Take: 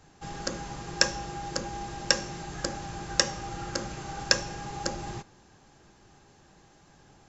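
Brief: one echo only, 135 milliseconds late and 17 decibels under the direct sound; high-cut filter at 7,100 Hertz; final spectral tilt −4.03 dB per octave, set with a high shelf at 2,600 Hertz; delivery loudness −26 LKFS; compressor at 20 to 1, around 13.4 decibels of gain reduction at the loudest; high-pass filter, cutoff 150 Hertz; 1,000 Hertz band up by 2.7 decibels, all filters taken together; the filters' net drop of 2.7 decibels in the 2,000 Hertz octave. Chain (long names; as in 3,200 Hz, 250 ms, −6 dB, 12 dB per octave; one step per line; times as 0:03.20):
high-pass filter 150 Hz
low-pass filter 7,100 Hz
parametric band 1,000 Hz +5 dB
parametric band 2,000 Hz −4 dB
high-shelf EQ 2,600 Hz −4.5 dB
downward compressor 20 to 1, threshold −36 dBFS
single-tap delay 135 ms −17 dB
level +15 dB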